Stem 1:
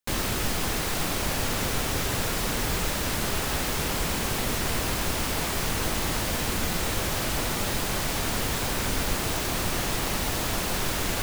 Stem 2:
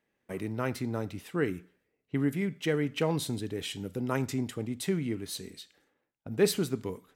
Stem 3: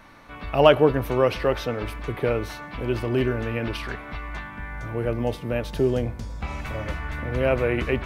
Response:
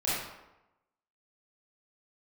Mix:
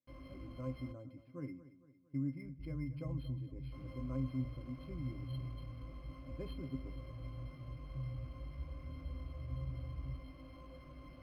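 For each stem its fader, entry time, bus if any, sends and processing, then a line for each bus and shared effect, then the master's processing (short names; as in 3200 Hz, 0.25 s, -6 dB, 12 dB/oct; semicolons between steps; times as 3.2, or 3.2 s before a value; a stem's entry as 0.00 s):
-12.0 dB, 0.00 s, muted 0.92–3.72, no send, no echo send, chorus 0.3 Hz, delay 18.5 ms, depth 2.2 ms
-5.5 dB, 0.00 s, no send, echo send -15.5 dB, dry
-9.5 dB, 2.15 s, no send, no echo send, inverse Chebyshev low-pass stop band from 650 Hz, stop band 70 dB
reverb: off
echo: feedback echo 0.228 s, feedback 49%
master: high shelf 6400 Hz +7.5 dB; octave resonator C, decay 0.11 s; decimation joined by straight lines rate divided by 6×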